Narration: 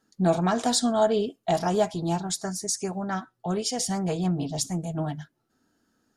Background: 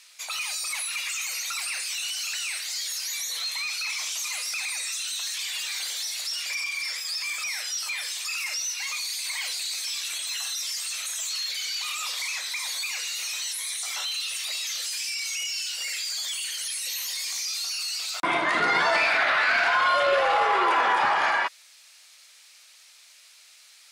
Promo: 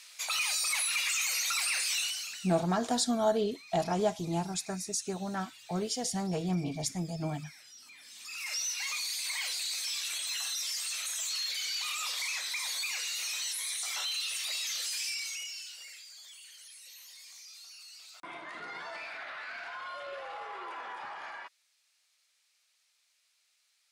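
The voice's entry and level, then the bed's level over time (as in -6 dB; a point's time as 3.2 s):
2.25 s, -5.5 dB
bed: 1.99 s 0 dB
2.68 s -22.5 dB
7.99 s -22.5 dB
8.56 s -4 dB
15.08 s -4 dB
16.08 s -20 dB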